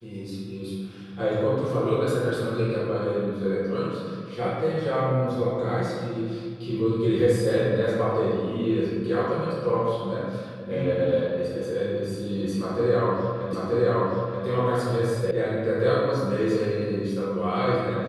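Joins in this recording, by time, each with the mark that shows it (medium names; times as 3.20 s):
13.53 s: repeat of the last 0.93 s
15.31 s: sound stops dead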